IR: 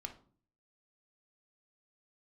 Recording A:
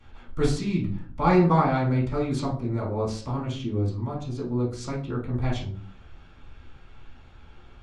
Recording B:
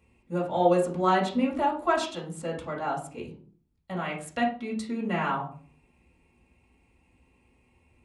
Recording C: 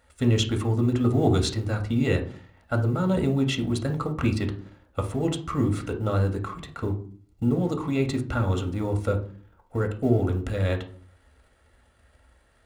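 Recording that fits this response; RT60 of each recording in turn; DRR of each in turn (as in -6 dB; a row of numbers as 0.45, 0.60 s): C; 0.45, 0.45, 0.45 s; -12.0, -3.5, 3.5 dB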